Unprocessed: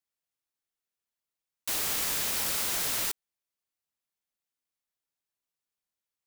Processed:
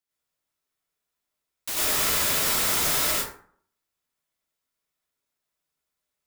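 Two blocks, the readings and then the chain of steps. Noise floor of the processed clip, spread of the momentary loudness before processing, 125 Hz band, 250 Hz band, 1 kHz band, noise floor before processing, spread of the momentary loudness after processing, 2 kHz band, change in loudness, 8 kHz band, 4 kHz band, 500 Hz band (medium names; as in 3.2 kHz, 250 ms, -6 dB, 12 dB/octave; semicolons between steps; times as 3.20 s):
-84 dBFS, 7 LU, +9.0 dB, +8.5 dB, +9.0 dB, under -85 dBFS, 10 LU, +7.5 dB, +6.0 dB, +5.5 dB, +6.5 dB, +9.5 dB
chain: plate-style reverb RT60 0.56 s, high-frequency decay 0.5×, pre-delay 80 ms, DRR -7.5 dB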